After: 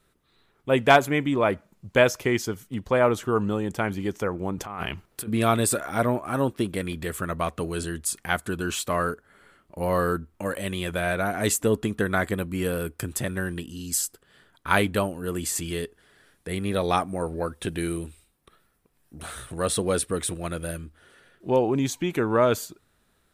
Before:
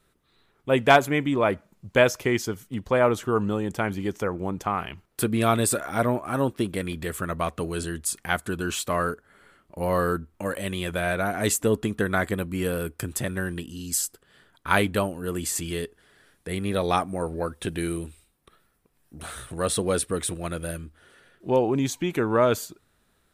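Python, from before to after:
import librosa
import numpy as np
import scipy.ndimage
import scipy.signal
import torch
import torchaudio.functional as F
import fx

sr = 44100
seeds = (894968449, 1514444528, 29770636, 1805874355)

y = fx.over_compress(x, sr, threshold_db=-33.0, ratio=-1.0, at=(4.58, 5.28))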